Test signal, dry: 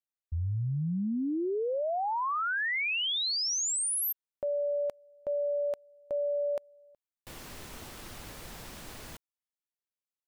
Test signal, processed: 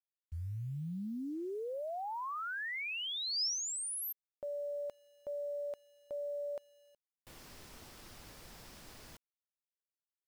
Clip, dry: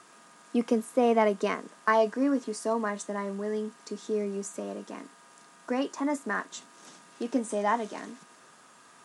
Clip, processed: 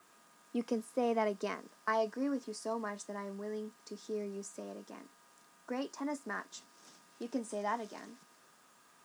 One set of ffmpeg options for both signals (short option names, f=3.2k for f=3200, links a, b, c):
-af "adynamicequalizer=threshold=0.00112:dfrequency=5100:dqfactor=3.6:tfrequency=5100:tqfactor=3.6:attack=5:release=100:ratio=0.4:range=3.5:mode=boostabove:tftype=bell,acrusher=bits=9:mix=0:aa=0.000001,volume=-9dB"